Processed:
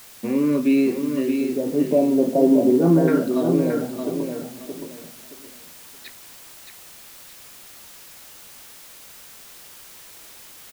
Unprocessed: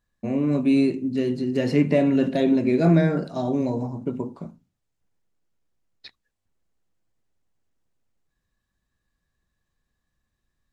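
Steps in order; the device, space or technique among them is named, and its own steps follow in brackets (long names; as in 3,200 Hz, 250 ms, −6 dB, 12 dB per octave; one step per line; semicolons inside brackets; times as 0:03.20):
0:01.41–0:03.08: low-pass filter 1,000 Hz 24 dB per octave
shortwave radio (band-pass filter 290–2,700 Hz; amplitude tremolo 0.34 Hz, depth 57%; auto-filter notch saw up 0.37 Hz 570–2,100 Hz; white noise bed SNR 21 dB)
repeating echo 622 ms, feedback 26%, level −6 dB
level +8 dB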